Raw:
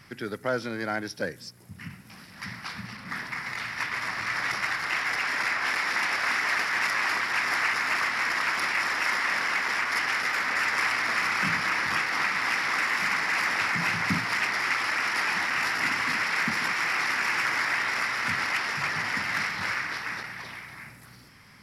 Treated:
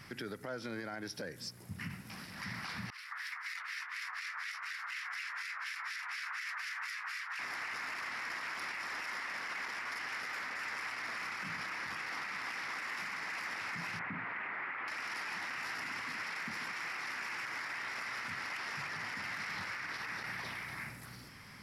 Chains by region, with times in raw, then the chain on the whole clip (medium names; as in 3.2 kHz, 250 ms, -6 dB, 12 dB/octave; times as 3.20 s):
2.90–7.39 s: high-pass 1.2 kHz 24 dB/octave + harmonic tremolo 4.1 Hz, depth 100%, crossover 1.4 kHz + doubling 12 ms -11 dB
13.99–14.88 s: low-pass 2.3 kHz 24 dB/octave + peaking EQ 98 Hz -6 dB 1.5 oct
whole clip: compression, threshold -34 dBFS; peak limiter -32 dBFS